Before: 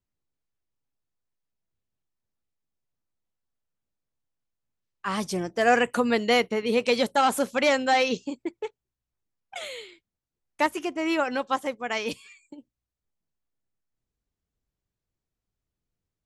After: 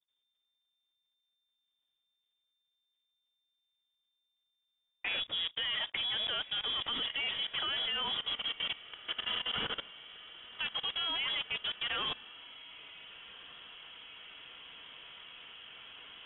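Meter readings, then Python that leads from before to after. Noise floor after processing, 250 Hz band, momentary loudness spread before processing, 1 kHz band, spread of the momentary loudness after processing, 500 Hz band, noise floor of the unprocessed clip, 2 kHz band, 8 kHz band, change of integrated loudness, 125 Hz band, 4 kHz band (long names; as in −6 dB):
−84 dBFS, −25.0 dB, 15 LU, −17.0 dB, 17 LU, −24.5 dB, below −85 dBFS, −9.0 dB, below −40 dB, −8.5 dB, −13.0 dB, +3.5 dB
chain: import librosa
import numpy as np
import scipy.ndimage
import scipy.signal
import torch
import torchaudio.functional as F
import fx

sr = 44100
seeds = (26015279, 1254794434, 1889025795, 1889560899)

y = fx.block_float(x, sr, bits=3)
y = fx.echo_diffused(y, sr, ms=1486, feedback_pct=64, wet_db=-12.5)
y = 10.0 ** (-10.5 / 20.0) * np.tanh(y / 10.0 ** (-10.5 / 20.0))
y = fx.level_steps(y, sr, step_db=17)
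y = fx.freq_invert(y, sr, carrier_hz=3600)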